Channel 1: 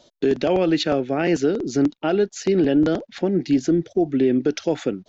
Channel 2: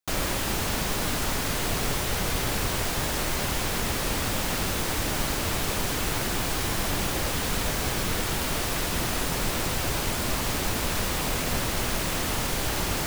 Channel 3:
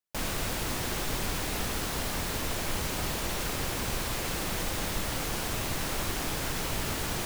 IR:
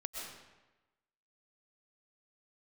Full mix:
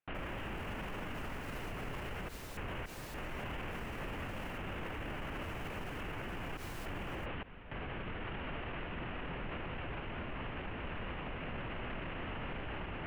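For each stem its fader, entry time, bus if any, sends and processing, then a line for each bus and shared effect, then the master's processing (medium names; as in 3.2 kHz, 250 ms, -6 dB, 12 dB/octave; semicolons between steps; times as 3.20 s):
mute
+2.5 dB, 0.00 s, no send, Chebyshev low-pass 2.9 kHz, order 5; random-step tremolo, depth 95%
-17.5 dB, 0.00 s, no send, none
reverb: none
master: peak limiter -33.5 dBFS, peak gain reduction 18.5 dB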